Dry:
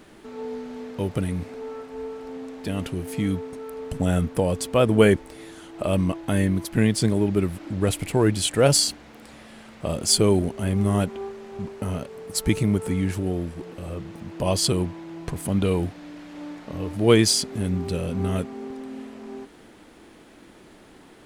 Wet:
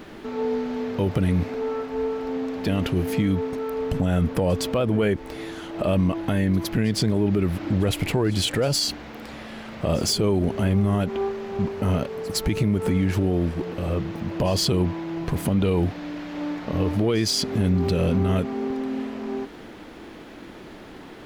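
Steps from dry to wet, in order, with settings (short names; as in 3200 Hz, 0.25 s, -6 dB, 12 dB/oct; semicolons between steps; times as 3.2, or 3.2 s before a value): compressor, threshold -21 dBFS, peak gain reduction 10.5 dB; soft clip -13.5 dBFS, distortion -26 dB; bell 9000 Hz -12.5 dB 0.8 oct; limiter -22 dBFS, peak gain reduction 6.5 dB; reverse echo 0.11 s -22 dB; gain +8 dB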